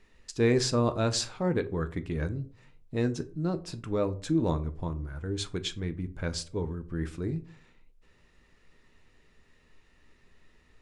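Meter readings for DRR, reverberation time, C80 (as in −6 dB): 9.5 dB, 0.45 s, 23.0 dB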